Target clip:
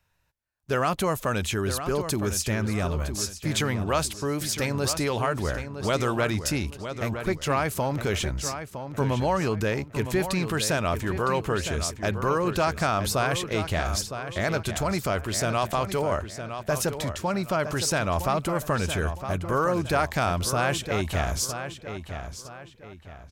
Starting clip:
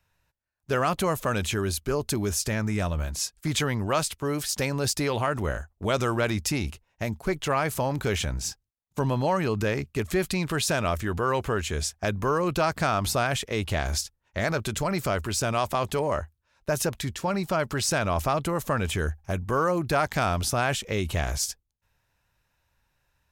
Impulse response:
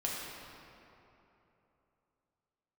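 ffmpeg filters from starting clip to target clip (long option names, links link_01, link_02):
-filter_complex "[0:a]asplit=2[link_01][link_02];[link_02]adelay=961,lowpass=frequency=4600:poles=1,volume=-9dB,asplit=2[link_03][link_04];[link_04]adelay=961,lowpass=frequency=4600:poles=1,volume=0.36,asplit=2[link_05][link_06];[link_06]adelay=961,lowpass=frequency=4600:poles=1,volume=0.36,asplit=2[link_07][link_08];[link_08]adelay=961,lowpass=frequency=4600:poles=1,volume=0.36[link_09];[link_01][link_03][link_05][link_07][link_09]amix=inputs=5:normalize=0"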